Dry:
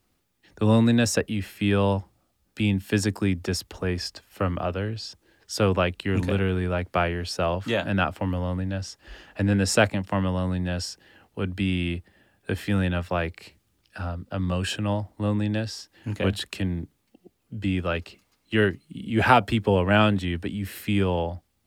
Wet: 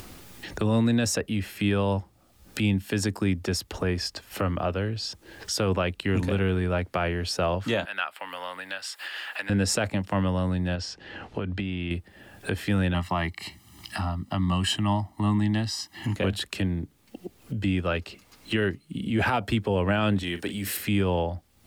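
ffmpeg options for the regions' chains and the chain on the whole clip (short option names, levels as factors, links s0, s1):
-filter_complex "[0:a]asettb=1/sr,asplit=3[s0][s1][s2];[s0]atrim=end=7.854[s3];[s1]atrim=start=7.85:end=9.5,asetpts=PTS-STARTPTS,afade=t=in:d=0.004:c=qsin,afade=t=out:st=1.646:d=0.004:c=qsin,acompressor=mode=upward:threshold=0.0158:ratio=2.5:attack=3.2:release=140:knee=2.83:detection=peak,highpass=1300,equalizer=f=6100:w=3:g=-13.5[s4];[s2]atrim=start=9.496[s5];[s3][s4]acrossfade=d=0.004:c1=hsin:c2=qsin[s6];[s6][s5]acrossfade=d=0.004:c1=qsin:c2=hsin,asettb=1/sr,asplit=3[s7][s8][s9];[s7]atrim=end=10.754[s10];[s8]atrim=start=10.75:end=11.91,asetpts=PTS-STARTPTS,afade=t=in:d=0.004:c=qsin,afade=t=out:st=1.156:d=0.004:c=qsin,lowpass=4500,acompressor=threshold=0.0398:ratio=6:attack=3.2:release=140:knee=1:detection=peak[s11];[s9]atrim=start=11.906[s12];[s10][s11]acrossfade=d=0.004:c1=hsin:c2=qsin[s13];[s13][s12]acrossfade=d=0.004:c1=qsin:c2=hsin,asettb=1/sr,asplit=3[s14][s15][s16];[s14]atrim=end=12.944[s17];[s15]atrim=start=12.94:end=16.16,asetpts=PTS-STARTPTS,afade=t=in:d=0.004:c=qsin,afade=t=out:st=3.216:d=0.004:c=qsin,highpass=f=140:p=1,aecho=1:1:1:0.98,atrim=end_sample=142002[s18];[s16]atrim=start=16.156[s19];[s17][s18]acrossfade=d=0.004:c1=hsin:c2=qsin[s20];[s20][s19]acrossfade=d=0.004:c1=qsin:c2=hsin,asettb=1/sr,asplit=3[s21][s22][s23];[s21]atrim=end=20.234[s24];[s22]atrim=start=20.23:end=20.77,asetpts=PTS-STARTPTS,afade=t=in:d=0.004:c=qsin,afade=t=out:st=0.536:d=0.004:c=qsin,bass=f=250:g=-10,treble=f=4000:g=8,asplit=2[s25][s26];[s26]adelay=40,volume=0.251[s27];[s25][s27]amix=inputs=2:normalize=0,atrim=end_sample=23814[s28];[s23]atrim=start=20.766[s29];[s24][s28]acrossfade=d=0.004:c1=hsin:c2=qsin[s30];[s30][s29]acrossfade=d=0.004:c1=qsin:c2=hsin,acompressor=mode=upward:threshold=0.0631:ratio=2.5,alimiter=limit=0.178:level=0:latency=1:release=71"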